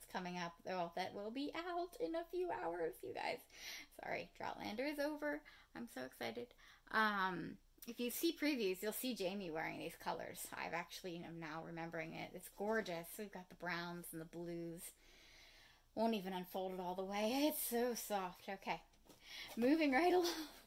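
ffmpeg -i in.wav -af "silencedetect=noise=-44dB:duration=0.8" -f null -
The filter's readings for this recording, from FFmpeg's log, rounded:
silence_start: 14.87
silence_end: 15.97 | silence_duration: 1.09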